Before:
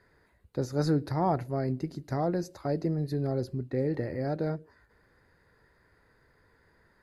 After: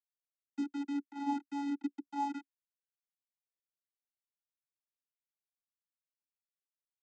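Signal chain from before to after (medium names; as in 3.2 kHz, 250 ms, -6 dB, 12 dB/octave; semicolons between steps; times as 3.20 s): resonant low shelf 230 Hz -14 dB, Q 3; 0.63–1.26 s: compression 2.5:1, threshold -30 dBFS, peak gain reduction 8.5 dB; band-pass sweep 510 Hz -> 4 kHz, 2.05–2.90 s; word length cut 6-bit, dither none; vocoder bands 16, square 283 Hz; trim -2.5 dB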